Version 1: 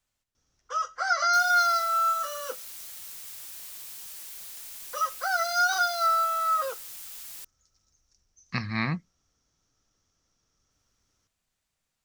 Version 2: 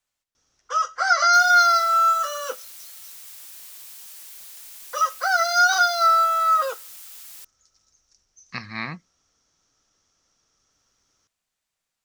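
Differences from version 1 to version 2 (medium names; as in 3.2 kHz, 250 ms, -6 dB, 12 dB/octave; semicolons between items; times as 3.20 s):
first sound +7.0 dB; master: add bass shelf 250 Hz -10.5 dB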